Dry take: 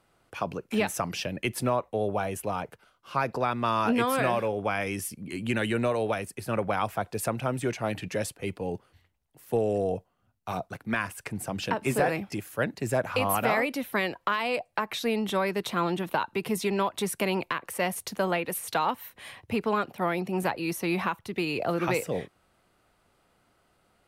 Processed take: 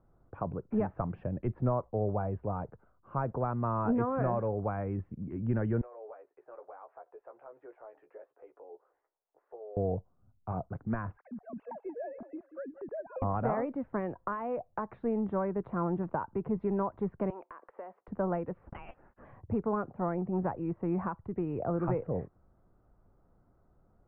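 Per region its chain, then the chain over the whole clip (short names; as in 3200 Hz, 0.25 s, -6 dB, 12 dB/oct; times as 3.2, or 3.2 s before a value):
5.81–9.77 inverse Chebyshev high-pass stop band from 220 Hz + compressor 2:1, threshold -54 dBFS + doubler 14 ms -5.5 dB
11.17–13.22 sine-wave speech + compressor 1.5:1, threshold -49 dBFS + feedback echo 0.183 s, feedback 27%, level -14.5 dB
17.3–18.08 Bessel high-pass 560 Hz, order 4 + compressor 4:1, threshold -35 dBFS
18.65–19.25 HPF 510 Hz + inverted band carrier 3600 Hz
whole clip: dynamic EQ 250 Hz, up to -4 dB, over -40 dBFS, Q 0.76; LPF 1400 Hz 24 dB/oct; tilt -3.5 dB/oct; gain -6 dB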